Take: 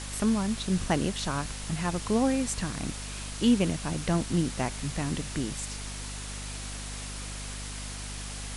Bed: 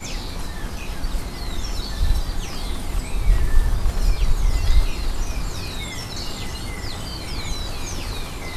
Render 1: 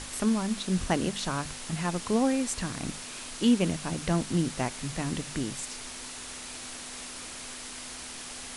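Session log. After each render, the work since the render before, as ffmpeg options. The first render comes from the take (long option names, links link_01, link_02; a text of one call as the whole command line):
ffmpeg -i in.wav -af "bandreject=frequency=50:width_type=h:width=6,bandreject=frequency=100:width_type=h:width=6,bandreject=frequency=150:width_type=h:width=6,bandreject=frequency=200:width_type=h:width=6" out.wav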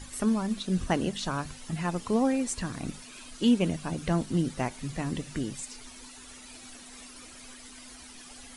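ffmpeg -i in.wav -af "afftdn=noise_reduction=12:noise_floor=-41" out.wav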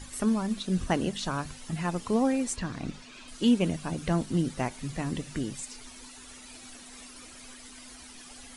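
ffmpeg -i in.wav -filter_complex "[0:a]asettb=1/sr,asplit=3[link_01][link_02][link_03];[link_01]atrim=end=2.564[link_04];[link_02]atrim=start=2.56:end=3.28,asetpts=PTS-STARTPTS,afade=type=in:duration=0.004:curve=qsin,afade=type=out:start_time=0.716:duration=0.004:curve=qsin,lowpass=5400[link_05];[link_03]atrim=start=3.276[link_06];[link_04][link_05]acrossfade=duration=0.004:curve1=hsin:curve2=qsin[link_07];[link_07][link_06]acrossfade=duration=0.004:curve1=qsin:curve2=hsin" out.wav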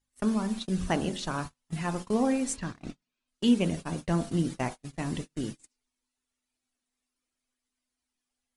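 ffmpeg -i in.wav -af "bandreject=frequency=45.43:width_type=h:width=4,bandreject=frequency=90.86:width_type=h:width=4,bandreject=frequency=136.29:width_type=h:width=4,bandreject=frequency=181.72:width_type=h:width=4,bandreject=frequency=227.15:width_type=h:width=4,bandreject=frequency=272.58:width_type=h:width=4,bandreject=frequency=318.01:width_type=h:width=4,bandreject=frequency=363.44:width_type=h:width=4,bandreject=frequency=408.87:width_type=h:width=4,bandreject=frequency=454.3:width_type=h:width=4,bandreject=frequency=499.73:width_type=h:width=4,bandreject=frequency=545.16:width_type=h:width=4,bandreject=frequency=590.59:width_type=h:width=4,bandreject=frequency=636.02:width_type=h:width=4,bandreject=frequency=681.45:width_type=h:width=4,bandreject=frequency=726.88:width_type=h:width=4,bandreject=frequency=772.31:width_type=h:width=4,bandreject=frequency=817.74:width_type=h:width=4,bandreject=frequency=863.17:width_type=h:width=4,bandreject=frequency=908.6:width_type=h:width=4,bandreject=frequency=954.03:width_type=h:width=4,bandreject=frequency=999.46:width_type=h:width=4,bandreject=frequency=1044.89:width_type=h:width=4,bandreject=frequency=1090.32:width_type=h:width=4,bandreject=frequency=1135.75:width_type=h:width=4,bandreject=frequency=1181.18:width_type=h:width=4,bandreject=frequency=1226.61:width_type=h:width=4,bandreject=frequency=1272.04:width_type=h:width=4,bandreject=frequency=1317.47:width_type=h:width=4,bandreject=frequency=1362.9:width_type=h:width=4,bandreject=frequency=1408.33:width_type=h:width=4,bandreject=frequency=1453.76:width_type=h:width=4,bandreject=frequency=1499.19:width_type=h:width=4,bandreject=frequency=1544.62:width_type=h:width=4,bandreject=frequency=1590.05:width_type=h:width=4,bandreject=frequency=1635.48:width_type=h:width=4,bandreject=frequency=1680.91:width_type=h:width=4,bandreject=frequency=1726.34:width_type=h:width=4,agate=range=-39dB:threshold=-34dB:ratio=16:detection=peak" out.wav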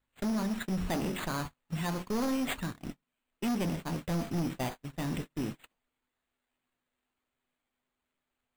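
ffmpeg -i in.wav -af "acrusher=samples=8:mix=1:aa=0.000001,volume=28dB,asoftclip=hard,volume=-28dB" out.wav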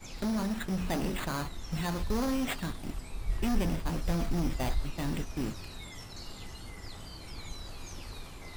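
ffmpeg -i in.wav -i bed.wav -filter_complex "[1:a]volume=-15dB[link_01];[0:a][link_01]amix=inputs=2:normalize=0" out.wav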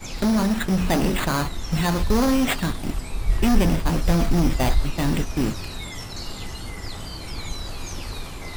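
ffmpeg -i in.wav -af "volume=11dB" out.wav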